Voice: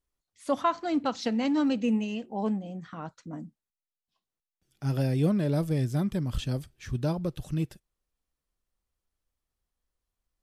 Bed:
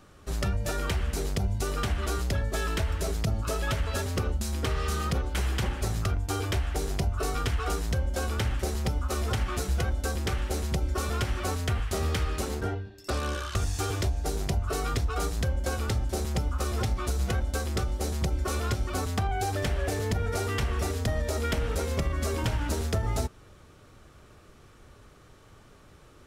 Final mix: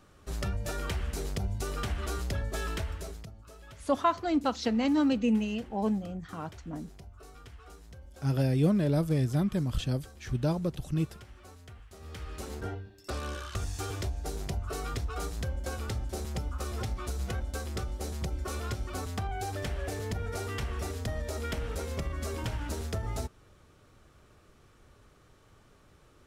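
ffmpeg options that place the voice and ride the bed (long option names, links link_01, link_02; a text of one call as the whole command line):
ffmpeg -i stem1.wav -i stem2.wav -filter_complex "[0:a]adelay=3400,volume=0dB[link_01];[1:a]volume=11dB,afade=type=out:start_time=2.7:duration=0.62:silence=0.141254,afade=type=in:start_time=11.99:duration=0.67:silence=0.16788[link_02];[link_01][link_02]amix=inputs=2:normalize=0" out.wav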